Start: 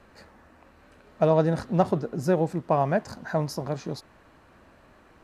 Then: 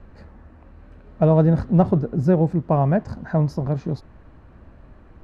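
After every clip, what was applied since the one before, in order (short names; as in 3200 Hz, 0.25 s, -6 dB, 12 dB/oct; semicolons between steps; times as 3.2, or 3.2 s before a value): RIAA curve playback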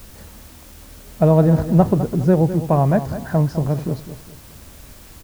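in parallel at -10.5 dB: requantised 6-bit, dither triangular; on the sum: feedback echo 0.206 s, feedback 35%, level -12 dB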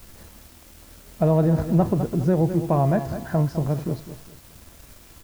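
in parallel at +1.5 dB: limiter -10 dBFS, peak gain reduction 8 dB; on the sum: resonator 340 Hz, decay 0.58 s, mix 70%; crossover distortion -52 dBFS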